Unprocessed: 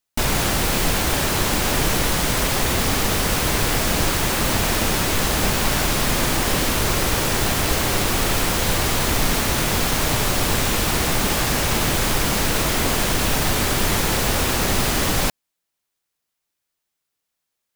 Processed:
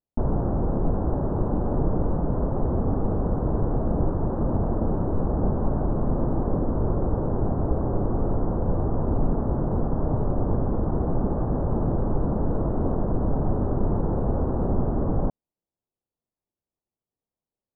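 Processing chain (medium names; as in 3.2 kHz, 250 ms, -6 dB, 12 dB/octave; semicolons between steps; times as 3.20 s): Gaussian low-pass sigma 11 samples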